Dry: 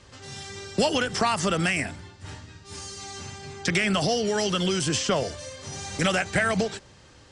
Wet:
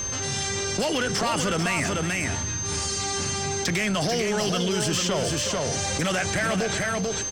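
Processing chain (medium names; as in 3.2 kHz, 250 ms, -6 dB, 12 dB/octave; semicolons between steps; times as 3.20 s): saturation -21.5 dBFS, distortion -13 dB; whistle 6.3 kHz -43 dBFS; multi-tap echo 370/441 ms -15.5/-6 dB; level flattener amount 70%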